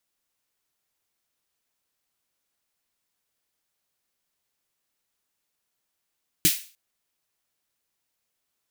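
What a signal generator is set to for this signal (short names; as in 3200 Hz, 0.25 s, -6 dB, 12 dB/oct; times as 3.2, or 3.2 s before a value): snare drum length 0.30 s, tones 170 Hz, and 320 Hz, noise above 2100 Hz, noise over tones 5 dB, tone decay 0.09 s, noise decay 0.37 s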